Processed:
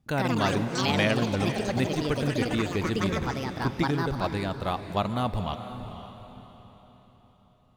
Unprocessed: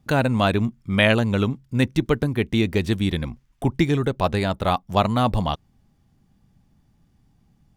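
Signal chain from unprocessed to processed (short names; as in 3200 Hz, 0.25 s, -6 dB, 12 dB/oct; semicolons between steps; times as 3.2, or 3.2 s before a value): diffused feedback echo 0.498 s, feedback 42%, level -10 dB; echoes that change speed 0.112 s, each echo +5 st, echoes 3; gain -8 dB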